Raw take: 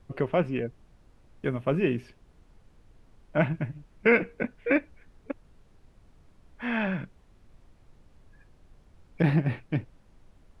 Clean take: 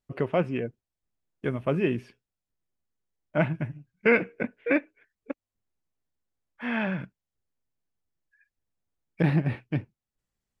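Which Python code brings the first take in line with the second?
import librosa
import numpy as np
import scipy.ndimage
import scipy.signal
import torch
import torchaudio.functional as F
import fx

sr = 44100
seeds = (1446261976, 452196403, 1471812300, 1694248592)

y = fx.noise_reduce(x, sr, print_start_s=2.13, print_end_s=2.63, reduce_db=29.0)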